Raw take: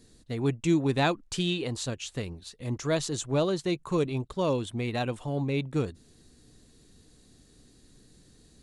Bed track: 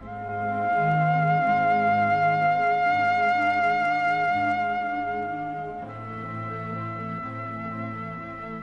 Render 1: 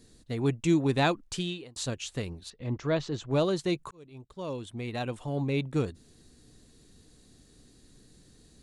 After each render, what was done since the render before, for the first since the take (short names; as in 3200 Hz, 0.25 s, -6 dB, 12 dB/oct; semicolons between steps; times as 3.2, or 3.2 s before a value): 1.24–1.76 fade out; 2.5–3.31 air absorption 190 m; 3.91–5.53 fade in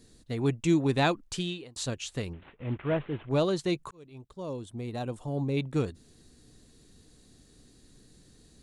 2.33–3.29 CVSD 16 kbps; 4.33–5.57 bell 2300 Hz -9 dB 1.7 oct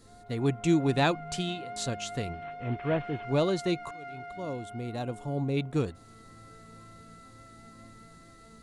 add bed track -19.5 dB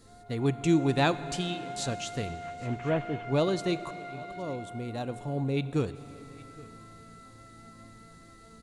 echo 0.814 s -22.5 dB; plate-style reverb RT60 3.3 s, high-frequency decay 1×, DRR 14 dB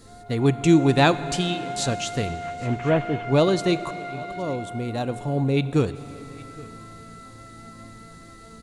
gain +7.5 dB